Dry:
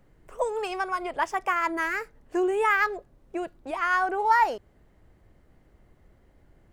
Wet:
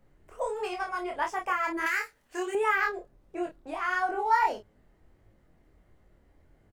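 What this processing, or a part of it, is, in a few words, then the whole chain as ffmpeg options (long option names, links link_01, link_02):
double-tracked vocal: -filter_complex "[0:a]asplit=2[link_01][link_02];[link_02]adelay=28,volume=-5dB[link_03];[link_01][link_03]amix=inputs=2:normalize=0,flanger=delay=18.5:depth=7:speed=1.5,asettb=1/sr,asplit=3[link_04][link_05][link_06];[link_04]atrim=end=1.864[link_07];[link_05]atrim=start=1.86:end=2.55,asetpts=PTS-STARTPTS,afade=type=in:duration=0.004:curve=qsin,afade=type=out:start_time=0.686:duration=0.004:curve=qsin,tiltshelf=frequency=970:gain=-9.5[link_08];[link_06]atrim=start=2.546[link_09];[link_07][link_08]acrossfade=duration=0.004:curve1=hsin:curve2=qsin[link_10];[link_10][link_09]acrossfade=duration=0.004:curve1=qsin:curve2=hsin,volume=-1.5dB"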